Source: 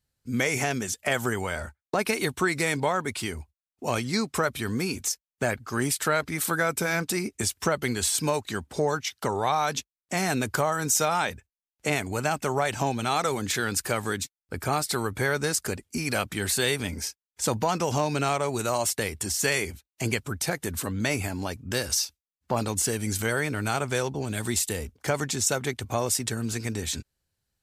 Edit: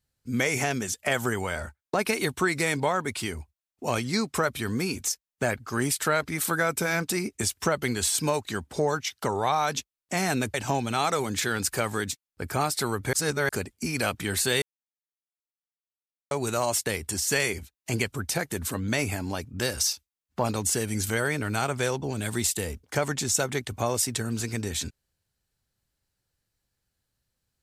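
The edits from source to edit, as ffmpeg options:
-filter_complex "[0:a]asplit=6[a][b][c][d][e][f];[a]atrim=end=10.542[g];[b]atrim=start=12.658:end=15.252[h];[c]atrim=start=15.248:end=15.612,asetpts=PTS-STARTPTS,areverse[i];[d]atrim=start=15.608:end=16.74,asetpts=PTS-STARTPTS,afade=t=out:st=1.128:d=0.004:c=hsin[j];[e]atrim=start=16.74:end=18.43,asetpts=PTS-STARTPTS,volume=0[k];[f]atrim=start=18.43,asetpts=PTS-STARTPTS,afade=t=in:d=0.004:c=hsin[l];[g][h]acrossfade=d=0.004:c1=hsin:c2=hsin[m];[m][i]acrossfade=d=0.004:c1=hsin:c2=hsin[n];[j][k][l]concat=n=3:v=0:a=1[o];[n][o]acrossfade=d=0.004:c1=hsin:c2=hsin"

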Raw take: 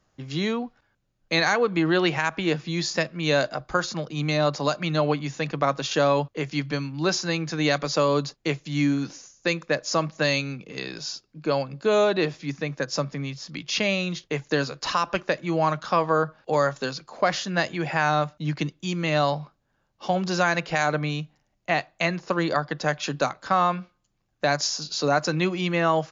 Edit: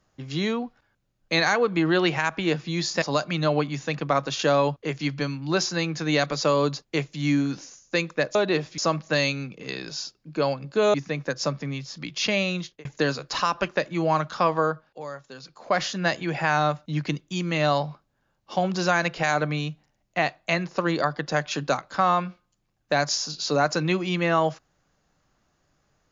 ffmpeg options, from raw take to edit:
-filter_complex "[0:a]asplit=8[a][b][c][d][e][f][g][h];[a]atrim=end=3.022[i];[b]atrim=start=4.538:end=9.872[j];[c]atrim=start=12.028:end=12.462[k];[d]atrim=start=9.868:end=12.032[l];[e]atrim=start=12.458:end=14.37,asetpts=PTS-STARTPTS,afade=t=out:st=1.622:d=0.29[m];[f]atrim=start=14.37:end=16.54,asetpts=PTS-STARTPTS,afade=t=in:d=0.004:c=hsin,afade=t=out:st=1.7:d=0.47:silence=0.188365[n];[g]atrim=start=16.54:end=16.86,asetpts=PTS-STARTPTS,volume=-14.5dB[o];[h]atrim=start=16.86,asetpts=PTS-STARTPTS,afade=t=in:d=0.47:silence=0.188365[p];[i][j]acrossfade=d=0.004:c1=hsin:c2=hsin[q];[q][k]acrossfade=d=0.004:c1=hsin:c2=hsin[r];[r][l]acrossfade=d=0.004:c1=hsin:c2=hsin[s];[m][n][o][p]concat=n=4:v=0:a=1[t];[s][t]acrossfade=d=0.004:c1=hsin:c2=hsin"

